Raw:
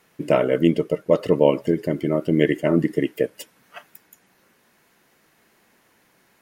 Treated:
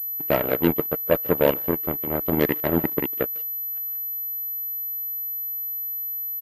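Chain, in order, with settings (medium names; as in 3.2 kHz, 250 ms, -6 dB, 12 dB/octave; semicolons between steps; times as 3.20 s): jump at every zero crossing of -21 dBFS; speakerphone echo 150 ms, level -11 dB; Chebyshev shaper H 3 -38 dB, 7 -17 dB, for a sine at -2 dBFS; class-D stage that switches slowly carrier 12 kHz; trim -3.5 dB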